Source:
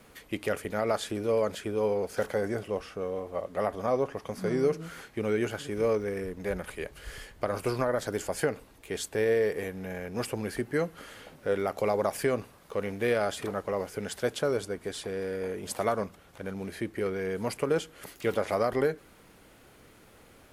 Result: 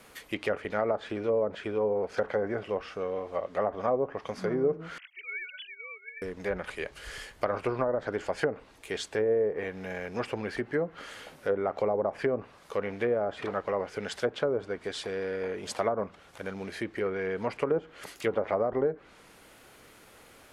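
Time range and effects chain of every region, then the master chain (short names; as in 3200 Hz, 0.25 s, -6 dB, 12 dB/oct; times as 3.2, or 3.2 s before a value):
4.98–6.22 sine-wave speech + resonant high-pass 2600 Hz, resonance Q 2.6
whole clip: treble ducked by the level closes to 690 Hz, closed at -23 dBFS; low shelf 390 Hz -8.5 dB; gain +4 dB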